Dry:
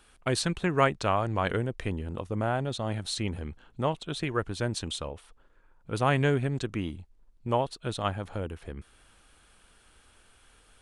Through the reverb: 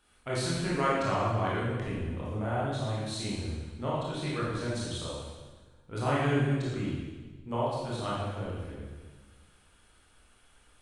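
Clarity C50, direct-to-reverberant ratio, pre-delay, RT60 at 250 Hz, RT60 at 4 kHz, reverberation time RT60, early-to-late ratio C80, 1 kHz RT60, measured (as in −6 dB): −1.5 dB, −7.5 dB, 20 ms, 1.6 s, 1.3 s, 1.4 s, 1.5 dB, 1.3 s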